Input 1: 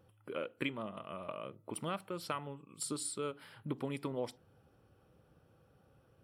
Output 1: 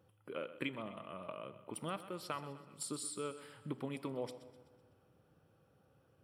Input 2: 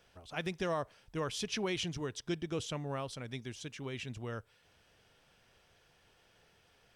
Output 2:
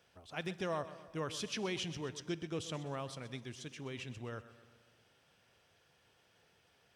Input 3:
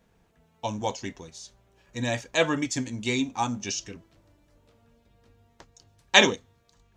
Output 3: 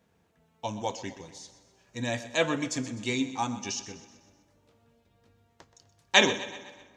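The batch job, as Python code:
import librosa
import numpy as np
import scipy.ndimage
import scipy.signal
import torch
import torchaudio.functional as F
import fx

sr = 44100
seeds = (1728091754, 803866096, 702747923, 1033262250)

y = scipy.signal.sosfilt(scipy.signal.butter(2, 76.0, 'highpass', fs=sr, output='sos'), x)
y = fx.echo_feedback(y, sr, ms=126, feedback_pct=50, wet_db=-14.5)
y = fx.rev_plate(y, sr, seeds[0], rt60_s=1.9, hf_ratio=0.7, predelay_ms=0, drr_db=17.0)
y = y * librosa.db_to_amplitude(-3.0)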